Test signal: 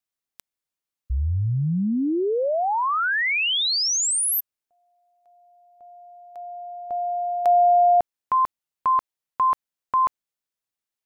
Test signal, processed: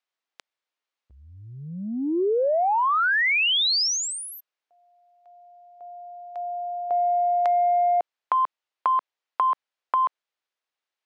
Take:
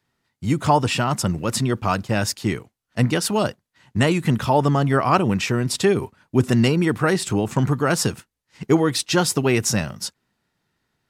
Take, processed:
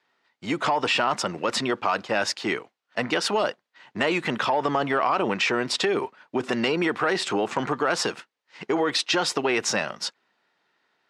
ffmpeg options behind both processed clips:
-filter_complex "[0:a]asplit=2[s0][s1];[s1]acontrast=83,volume=0.891[s2];[s0][s2]amix=inputs=2:normalize=0,alimiter=limit=0.708:level=0:latency=1:release=126,highpass=470,lowpass=4000,acompressor=threshold=0.141:ratio=6:attack=7.5:release=51:knee=1:detection=peak,volume=0.668"

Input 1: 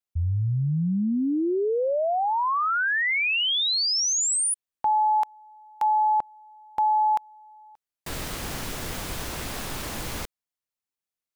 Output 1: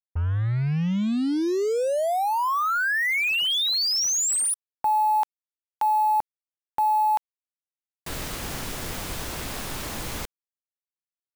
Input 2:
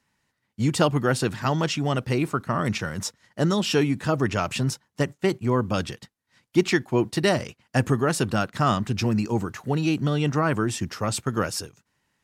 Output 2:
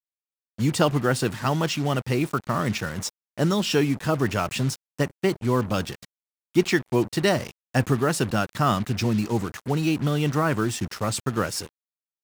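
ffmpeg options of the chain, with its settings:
-af "acrusher=bits=5:mix=0:aa=0.5"

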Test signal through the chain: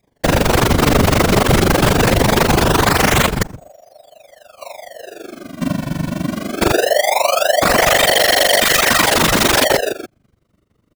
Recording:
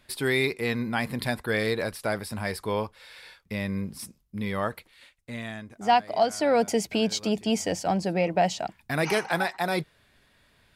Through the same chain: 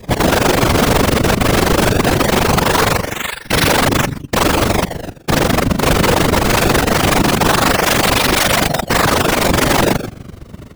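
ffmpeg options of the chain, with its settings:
-filter_complex "[0:a]asplit=2[s0][s1];[s1]adelay=137,lowpass=f=1500:p=1,volume=0.376,asplit=2[s2][s3];[s3]adelay=137,lowpass=f=1500:p=1,volume=0.19,asplit=2[s4][s5];[s5]adelay=137,lowpass=f=1500:p=1,volume=0.19[s6];[s2][s4][s6]amix=inputs=3:normalize=0[s7];[s0][s7]amix=inputs=2:normalize=0,acrusher=samples=30:mix=1:aa=0.000001:lfo=1:lforange=48:lforate=0.21,adynamicequalizer=threshold=0.00891:dfrequency=800:dqfactor=4.1:tfrequency=800:tqfactor=4.1:attack=5:release=100:ratio=0.375:range=2.5:mode=cutabove:tftype=bell,asplit=2[s8][s9];[s9]acompressor=threshold=0.0141:ratio=12,volume=0.708[s10];[s8][s10]amix=inputs=2:normalize=0,aeval=exprs='0.0668*(abs(mod(val(0)/0.0668+3,4)-2)-1)':c=same,lowshelf=f=150:g=8,tremolo=f=24:d=0.947,highpass=f=58:w=0.5412,highpass=f=58:w=1.3066,aeval=exprs='(mod(31.6*val(0)+1,2)-1)/31.6':c=same,afftfilt=real='hypot(re,im)*cos(2*PI*random(0))':imag='hypot(re,im)*sin(2*PI*random(1))':win_size=512:overlap=0.75,acontrast=70,alimiter=level_in=18.8:limit=0.891:release=50:level=0:latency=1,volume=0.891"

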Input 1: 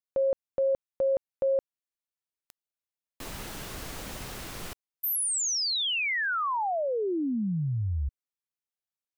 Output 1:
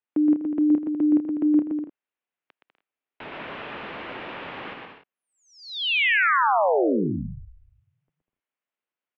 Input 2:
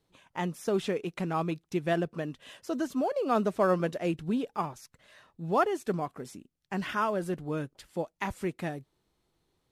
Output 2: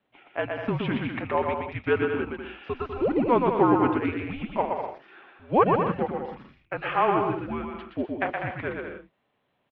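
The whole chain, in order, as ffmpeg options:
-af "highpass=f=480:t=q:w=0.5412,highpass=f=480:t=q:w=1.307,lowpass=f=3200:t=q:w=0.5176,lowpass=f=3200:t=q:w=0.7071,lowpass=f=3200:t=q:w=1.932,afreqshift=-240,aecho=1:1:120|198|248.7|281.7|303.1:0.631|0.398|0.251|0.158|0.1,volume=2.11"

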